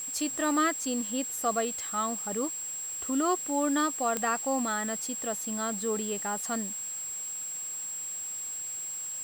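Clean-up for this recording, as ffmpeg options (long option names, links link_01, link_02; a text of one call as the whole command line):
ffmpeg -i in.wav -af "adeclick=threshold=4,bandreject=frequency=7600:width=30,afwtdn=0.0035" out.wav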